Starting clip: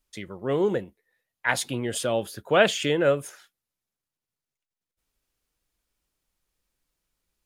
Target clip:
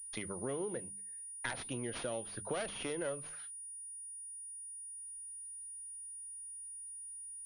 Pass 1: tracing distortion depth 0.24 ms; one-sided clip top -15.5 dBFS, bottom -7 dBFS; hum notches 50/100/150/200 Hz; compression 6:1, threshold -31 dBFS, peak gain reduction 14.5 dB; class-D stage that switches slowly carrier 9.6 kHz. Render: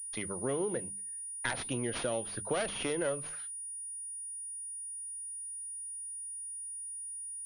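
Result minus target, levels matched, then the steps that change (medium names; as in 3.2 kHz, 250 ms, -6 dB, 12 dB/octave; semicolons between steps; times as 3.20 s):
compression: peak gain reduction -5.5 dB
change: compression 6:1, threshold -37.5 dBFS, peak gain reduction 20 dB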